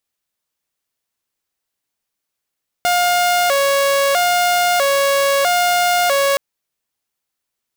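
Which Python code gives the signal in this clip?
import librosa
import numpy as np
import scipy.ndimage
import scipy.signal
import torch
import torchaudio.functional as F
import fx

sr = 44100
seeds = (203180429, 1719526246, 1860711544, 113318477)

y = fx.siren(sr, length_s=3.52, kind='hi-lo', low_hz=556.0, high_hz=709.0, per_s=0.77, wave='saw', level_db=-10.5)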